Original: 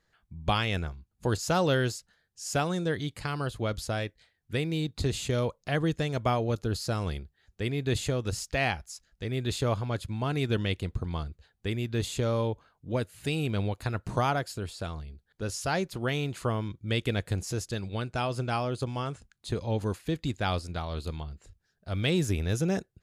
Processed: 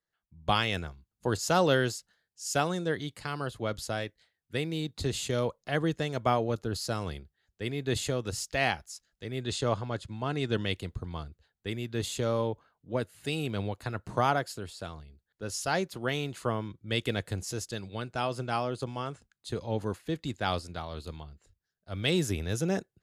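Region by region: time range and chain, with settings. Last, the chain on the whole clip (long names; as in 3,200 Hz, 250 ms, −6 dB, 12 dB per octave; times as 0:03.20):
0:09.41–0:10.63: low-pass filter 9,200 Hz 24 dB per octave + notch filter 2,300 Hz, Q 27
whole clip: low-shelf EQ 110 Hz −9.5 dB; notch filter 2,400 Hz, Q 19; multiband upward and downward expander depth 40%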